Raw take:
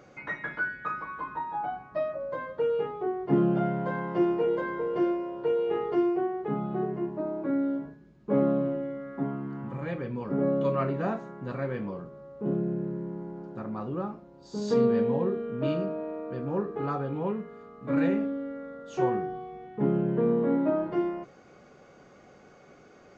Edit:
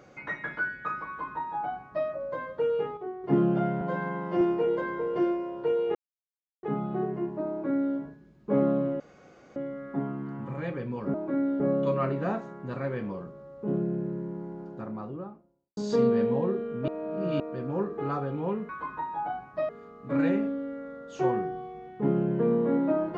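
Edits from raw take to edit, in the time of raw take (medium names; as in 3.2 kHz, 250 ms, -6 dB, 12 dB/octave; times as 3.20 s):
1.07–2.07 s: copy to 17.47 s
2.97–3.24 s: gain -6.5 dB
3.81–4.21 s: stretch 1.5×
5.75–6.43 s: mute
7.30–7.76 s: copy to 10.38 s
8.80 s: insert room tone 0.56 s
13.43–14.55 s: studio fade out
15.66–16.18 s: reverse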